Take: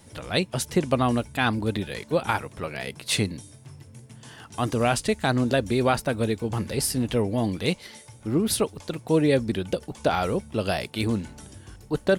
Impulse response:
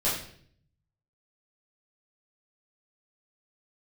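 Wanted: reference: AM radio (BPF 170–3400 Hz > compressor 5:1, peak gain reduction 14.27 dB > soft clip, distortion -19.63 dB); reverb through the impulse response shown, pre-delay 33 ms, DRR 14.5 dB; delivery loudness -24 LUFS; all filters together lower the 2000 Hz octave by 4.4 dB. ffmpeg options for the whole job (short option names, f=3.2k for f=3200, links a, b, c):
-filter_complex "[0:a]equalizer=f=2k:t=o:g=-5.5,asplit=2[a][b];[1:a]atrim=start_sample=2205,adelay=33[c];[b][c]afir=irnorm=-1:irlink=0,volume=-24.5dB[d];[a][d]amix=inputs=2:normalize=0,highpass=170,lowpass=3.4k,acompressor=threshold=-32dB:ratio=5,asoftclip=threshold=-24dB,volume=14dB"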